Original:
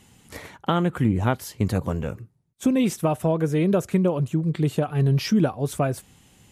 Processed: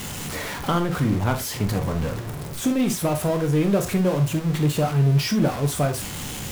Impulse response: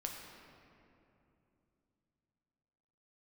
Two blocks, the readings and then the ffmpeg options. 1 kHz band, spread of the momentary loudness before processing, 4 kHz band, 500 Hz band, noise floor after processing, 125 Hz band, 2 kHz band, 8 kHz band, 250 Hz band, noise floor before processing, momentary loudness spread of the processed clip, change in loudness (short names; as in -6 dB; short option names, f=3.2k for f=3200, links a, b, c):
+1.5 dB, 11 LU, +5.5 dB, 0.0 dB, -33 dBFS, +2.0 dB, +4.0 dB, +8.0 dB, 0.0 dB, -60 dBFS, 9 LU, +0.5 dB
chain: -filter_complex "[0:a]aeval=exprs='val(0)+0.5*0.0631*sgn(val(0))':c=same[a];[1:a]atrim=start_sample=2205,atrim=end_sample=3528[b];[a][b]afir=irnorm=-1:irlink=0"